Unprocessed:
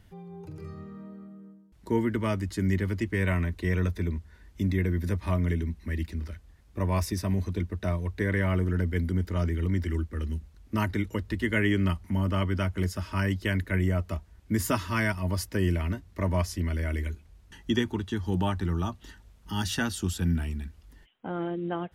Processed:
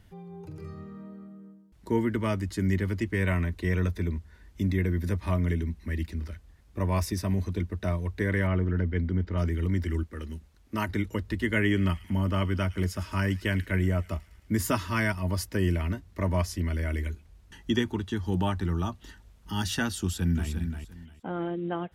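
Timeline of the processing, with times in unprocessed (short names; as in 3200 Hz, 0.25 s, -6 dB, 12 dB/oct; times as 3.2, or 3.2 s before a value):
8.47–9.38 air absorption 180 m
10.03–10.89 low shelf 170 Hz -9 dB
11.6–14.56 thin delay 0.109 s, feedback 62%, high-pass 3000 Hz, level -12.5 dB
20–20.49 echo throw 0.35 s, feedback 20%, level -7 dB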